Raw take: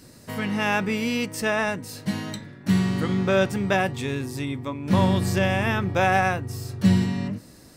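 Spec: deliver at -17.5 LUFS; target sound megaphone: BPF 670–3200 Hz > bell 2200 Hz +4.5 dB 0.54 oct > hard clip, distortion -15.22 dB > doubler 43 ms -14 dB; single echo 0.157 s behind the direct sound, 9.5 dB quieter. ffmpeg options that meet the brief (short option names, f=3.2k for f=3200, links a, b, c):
-filter_complex "[0:a]highpass=670,lowpass=3.2k,equalizer=f=2.2k:t=o:w=0.54:g=4.5,aecho=1:1:157:0.335,asoftclip=type=hard:threshold=-17dB,asplit=2[a][b];[b]adelay=43,volume=-14dB[c];[a][c]amix=inputs=2:normalize=0,volume=10.5dB"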